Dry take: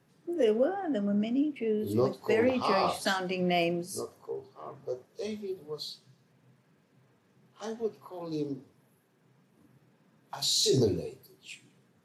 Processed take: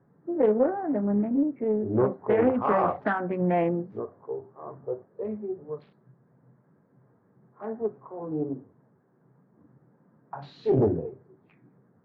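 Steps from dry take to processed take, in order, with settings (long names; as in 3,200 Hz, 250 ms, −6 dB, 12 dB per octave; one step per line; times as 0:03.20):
adaptive Wiener filter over 15 samples
low-pass filter 1,800 Hz 24 dB per octave
highs frequency-modulated by the lows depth 0.44 ms
level +4 dB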